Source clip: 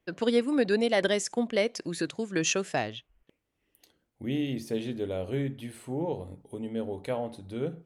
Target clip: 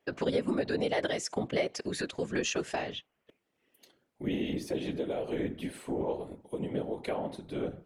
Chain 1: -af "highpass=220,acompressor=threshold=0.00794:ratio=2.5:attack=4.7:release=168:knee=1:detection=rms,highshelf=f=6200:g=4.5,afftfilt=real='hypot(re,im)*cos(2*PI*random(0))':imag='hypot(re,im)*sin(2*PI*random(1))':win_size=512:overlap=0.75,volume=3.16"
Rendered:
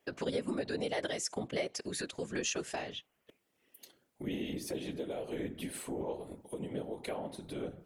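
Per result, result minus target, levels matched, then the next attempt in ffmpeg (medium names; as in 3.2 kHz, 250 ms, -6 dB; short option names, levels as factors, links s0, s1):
8 kHz band +6.0 dB; compression: peak gain reduction +5.5 dB
-af "highpass=220,acompressor=threshold=0.00794:ratio=2.5:attack=4.7:release=168:knee=1:detection=rms,highshelf=f=6200:g=-7,afftfilt=real='hypot(re,im)*cos(2*PI*random(0))':imag='hypot(re,im)*sin(2*PI*random(1))':win_size=512:overlap=0.75,volume=3.16"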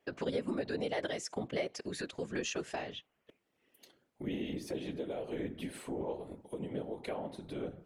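compression: peak gain reduction +5.5 dB
-af "highpass=220,acompressor=threshold=0.0224:ratio=2.5:attack=4.7:release=168:knee=1:detection=rms,highshelf=f=6200:g=-7,afftfilt=real='hypot(re,im)*cos(2*PI*random(0))':imag='hypot(re,im)*sin(2*PI*random(1))':win_size=512:overlap=0.75,volume=3.16"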